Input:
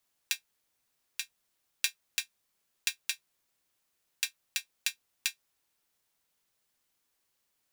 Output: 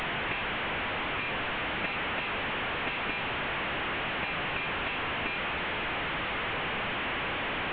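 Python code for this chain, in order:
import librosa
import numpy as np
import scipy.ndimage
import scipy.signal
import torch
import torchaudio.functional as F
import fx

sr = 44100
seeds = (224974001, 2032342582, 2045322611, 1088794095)

y = fx.delta_mod(x, sr, bps=16000, step_db=-26.5)
y = y * 10.0 ** (1.5 / 20.0)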